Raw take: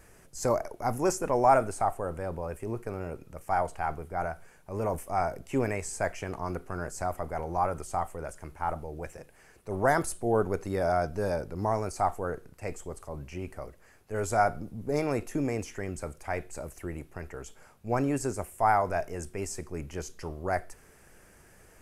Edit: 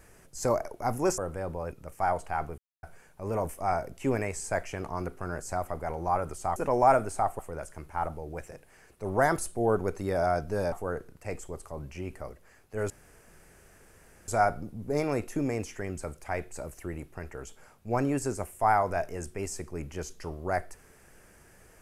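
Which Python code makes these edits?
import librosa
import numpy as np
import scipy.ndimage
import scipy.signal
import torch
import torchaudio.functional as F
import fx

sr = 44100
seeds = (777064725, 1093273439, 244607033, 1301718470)

y = fx.edit(x, sr, fx.move(start_s=1.18, length_s=0.83, to_s=8.05),
    fx.cut(start_s=2.55, length_s=0.66),
    fx.silence(start_s=4.07, length_s=0.25),
    fx.cut(start_s=11.38, length_s=0.71),
    fx.insert_room_tone(at_s=14.27, length_s=1.38), tone=tone)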